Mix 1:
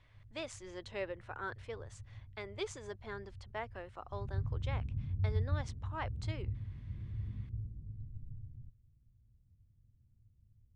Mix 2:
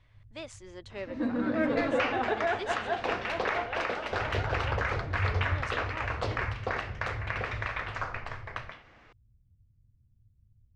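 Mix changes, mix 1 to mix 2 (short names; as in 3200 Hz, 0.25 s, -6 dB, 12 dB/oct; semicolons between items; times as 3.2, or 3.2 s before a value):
second sound: unmuted; master: add low shelf 170 Hz +3.5 dB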